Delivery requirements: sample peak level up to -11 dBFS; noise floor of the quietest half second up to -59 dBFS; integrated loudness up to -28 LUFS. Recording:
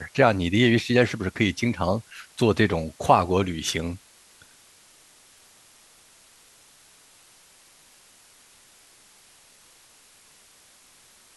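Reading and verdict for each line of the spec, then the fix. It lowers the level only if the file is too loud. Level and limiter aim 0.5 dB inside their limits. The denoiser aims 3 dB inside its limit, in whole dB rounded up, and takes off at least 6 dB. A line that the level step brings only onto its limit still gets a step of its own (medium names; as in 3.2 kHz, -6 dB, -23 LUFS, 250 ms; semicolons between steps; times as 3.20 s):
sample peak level -3.0 dBFS: fail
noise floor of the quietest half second -55 dBFS: fail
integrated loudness -23.0 LUFS: fail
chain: trim -5.5 dB; peak limiter -11.5 dBFS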